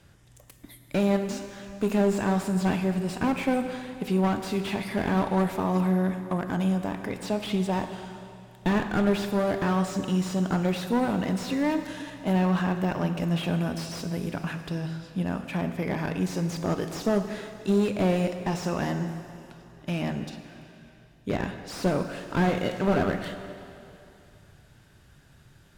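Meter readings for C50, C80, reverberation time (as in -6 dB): 8.5 dB, 9.5 dB, 2.7 s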